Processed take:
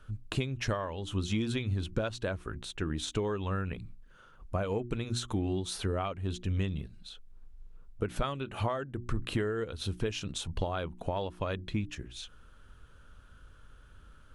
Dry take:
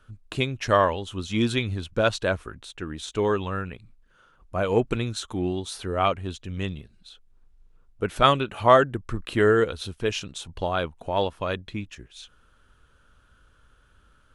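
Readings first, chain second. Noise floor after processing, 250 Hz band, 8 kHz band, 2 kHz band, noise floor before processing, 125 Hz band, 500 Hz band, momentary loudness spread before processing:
−56 dBFS, −6.0 dB, −3.5 dB, −11.0 dB, −60 dBFS, −3.0 dB, −11.5 dB, 16 LU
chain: mains-hum notches 60/120/180/240/300/360 Hz
downward compressor 12 to 1, threshold −31 dBFS, peak gain reduction 21 dB
low-shelf EQ 260 Hz +6.5 dB

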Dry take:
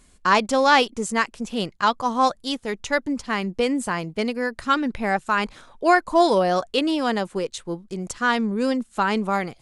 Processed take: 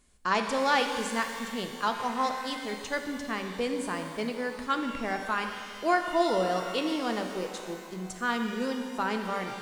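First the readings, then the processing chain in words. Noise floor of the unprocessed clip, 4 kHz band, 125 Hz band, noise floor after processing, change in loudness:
−55 dBFS, −7.0 dB, −9.0 dB, −42 dBFS, −8.0 dB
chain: mains-hum notches 50/100/150/200 Hz
reverb with rising layers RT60 2 s, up +12 semitones, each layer −8 dB, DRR 5 dB
level −9 dB

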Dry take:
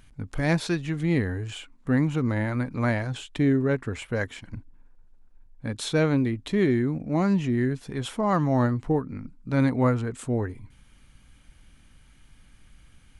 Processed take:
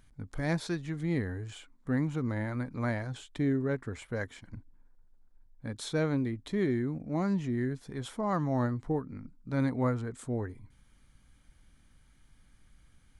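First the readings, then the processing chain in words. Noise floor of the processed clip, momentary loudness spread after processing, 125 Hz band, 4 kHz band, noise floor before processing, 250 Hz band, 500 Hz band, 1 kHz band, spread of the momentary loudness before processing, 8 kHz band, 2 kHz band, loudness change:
−63 dBFS, 13 LU, −7.0 dB, −8.5 dB, −56 dBFS, −7.0 dB, −7.0 dB, −7.0 dB, 13 LU, −7.0 dB, −8.0 dB, −7.0 dB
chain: parametric band 2,700 Hz −7.5 dB 0.33 octaves
level −7 dB

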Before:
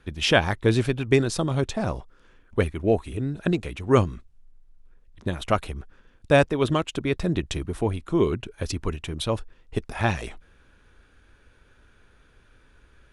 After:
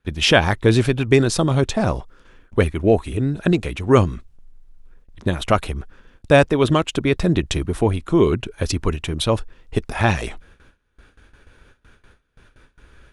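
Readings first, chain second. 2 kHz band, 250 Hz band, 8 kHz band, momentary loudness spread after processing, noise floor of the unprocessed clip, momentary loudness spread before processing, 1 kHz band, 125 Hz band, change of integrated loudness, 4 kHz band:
+5.5 dB, +6.0 dB, +7.0 dB, 11 LU, −59 dBFS, 12 LU, +5.5 dB, +6.0 dB, +5.5 dB, +6.0 dB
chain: noise gate with hold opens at −46 dBFS
in parallel at −2 dB: brickwall limiter −14.5 dBFS, peak gain reduction 9 dB
on the sum: level +2 dB

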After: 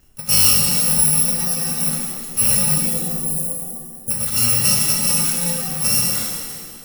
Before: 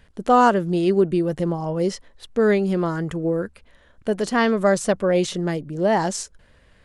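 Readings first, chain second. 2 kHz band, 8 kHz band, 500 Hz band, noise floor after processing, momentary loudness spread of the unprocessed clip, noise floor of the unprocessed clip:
−2.0 dB, +20.0 dB, −15.5 dB, −37 dBFS, 10 LU, −55 dBFS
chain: samples in bit-reversed order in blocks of 128 samples
time-frequency box erased 0:02.74–0:04.10, 610–6,600 Hz
reverb with rising layers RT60 1.9 s, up +7 semitones, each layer −8 dB, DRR −2 dB
level −2 dB

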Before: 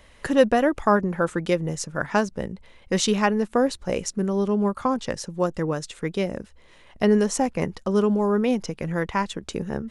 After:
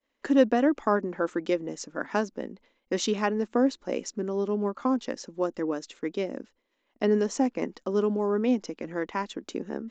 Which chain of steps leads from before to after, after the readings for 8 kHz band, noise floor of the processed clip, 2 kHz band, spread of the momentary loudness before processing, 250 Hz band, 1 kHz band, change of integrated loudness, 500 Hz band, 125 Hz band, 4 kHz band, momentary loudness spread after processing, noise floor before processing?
−8.0 dB, −77 dBFS, −6.5 dB, 10 LU, −3.5 dB, −6.0 dB, −4.0 dB, −4.0 dB, −11.0 dB, −6.5 dB, 11 LU, −53 dBFS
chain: downsampling to 16,000 Hz
downward expander −40 dBFS
low shelf with overshoot 180 Hz −13.5 dB, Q 3
level −6.5 dB

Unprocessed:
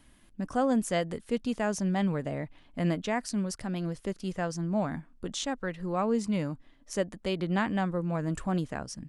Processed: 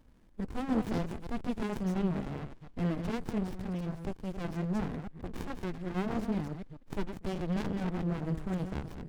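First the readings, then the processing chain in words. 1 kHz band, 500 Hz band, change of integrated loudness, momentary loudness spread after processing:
−7.0 dB, −7.0 dB, −4.0 dB, 9 LU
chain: delay that plays each chunk backwards 141 ms, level −8 dB
windowed peak hold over 65 samples

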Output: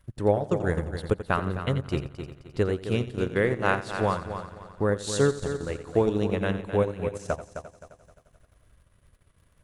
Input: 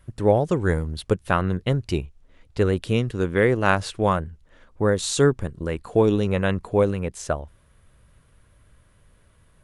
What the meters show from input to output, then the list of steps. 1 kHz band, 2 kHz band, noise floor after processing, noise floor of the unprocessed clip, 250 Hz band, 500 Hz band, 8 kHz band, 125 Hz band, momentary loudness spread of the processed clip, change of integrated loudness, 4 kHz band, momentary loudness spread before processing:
−4.0 dB, −4.0 dB, −63 dBFS, −58 dBFS, −4.5 dB, −4.0 dB, −6.0 dB, −5.0 dB, 11 LU, −4.5 dB, −5.5 dB, 10 LU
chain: surface crackle 39 per second −49 dBFS
echo machine with several playback heads 87 ms, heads first and third, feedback 52%, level −9 dB
transient designer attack +3 dB, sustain −10 dB
level −6 dB

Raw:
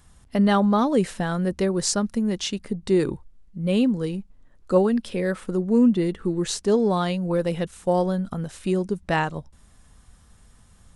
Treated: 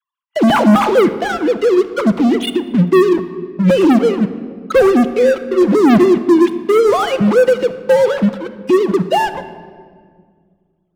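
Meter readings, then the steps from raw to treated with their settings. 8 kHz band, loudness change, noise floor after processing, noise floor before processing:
can't be measured, +10.0 dB, −64 dBFS, −54 dBFS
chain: three sine waves on the formant tracks
low-shelf EQ 270 Hz +5.5 dB
notch filter 1,800 Hz, Q 6.3
time-frequency box erased 0:02.68–0:03.08, 420–1,500 Hz
all-pass dispersion lows, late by 50 ms, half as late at 430 Hz
leveller curve on the samples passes 5
rectangular room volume 2,800 cubic metres, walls mixed, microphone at 0.72 metres
level −4.5 dB

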